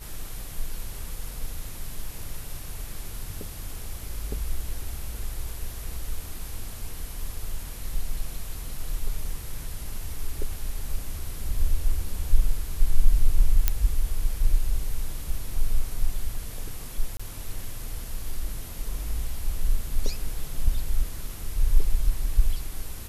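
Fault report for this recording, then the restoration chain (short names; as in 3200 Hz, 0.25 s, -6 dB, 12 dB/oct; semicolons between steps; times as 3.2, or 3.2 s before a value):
13.68 pop -5 dBFS
17.17–17.2 gap 25 ms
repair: de-click; interpolate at 17.17, 25 ms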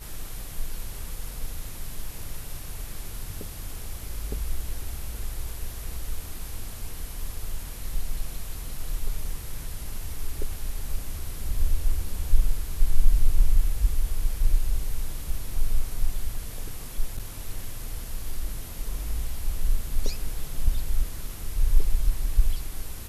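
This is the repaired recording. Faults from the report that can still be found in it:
none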